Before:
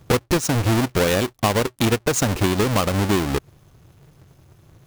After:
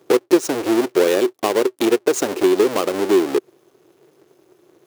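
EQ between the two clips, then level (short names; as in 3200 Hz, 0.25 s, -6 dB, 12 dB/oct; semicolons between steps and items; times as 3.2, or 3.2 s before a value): resonant high-pass 370 Hz, resonance Q 4.4; -2.5 dB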